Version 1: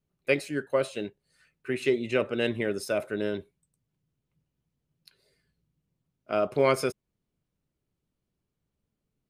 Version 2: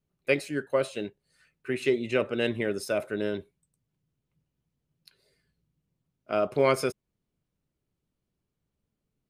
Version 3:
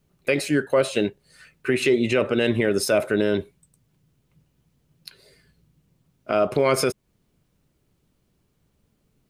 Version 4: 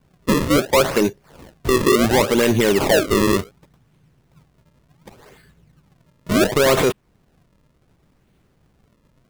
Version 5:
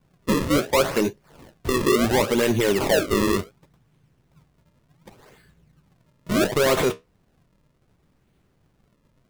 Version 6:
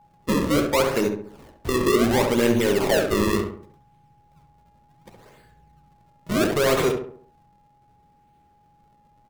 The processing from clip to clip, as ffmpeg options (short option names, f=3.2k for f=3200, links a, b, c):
-af anull
-filter_complex "[0:a]asplit=2[a][b];[b]acompressor=threshold=-34dB:ratio=6,volume=-0.5dB[c];[a][c]amix=inputs=2:normalize=0,alimiter=limit=-18.5dB:level=0:latency=1:release=56,volume=8.5dB"
-af "acrusher=samples=33:mix=1:aa=0.000001:lfo=1:lforange=52.8:lforate=0.69,asoftclip=type=tanh:threshold=-17.5dB,volume=8dB"
-af "flanger=delay=5.3:depth=8.8:regen=-63:speed=0.79:shape=triangular"
-filter_complex "[0:a]aeval=exprs='val(0)+0.00251*sin(2*PI*830*n/s)':c=same,asplit=2[a][b];[b]adelay=68,lowpass=f=1.7k:p=1,volume=-4dB,asplit=2[c][d];[d]adelay=68,lowpass=f=1.7k:p=1,volume=0.45,asplit=2[e][f];[f]adelay=68,lowpass=f=1.7k:p=1,volume=0.45,asplit=2[g][h];[h]adelay=68,lowpass=f=1.7k:p=1,volume=0.45,asplit=2[i][j];[j]adelay=68,lowpass=f=1.7k:p=1,volume=0.45,asplit=2[k][l];[l]adelay=68,lowpass=f=1.7k:p=1,volume=0.45[m];[c][e][g][i][k][m]amix=inputs=6:normalize=0[n];[a][n]amix=inputs=2:normalize=0,volume=-1.5dB"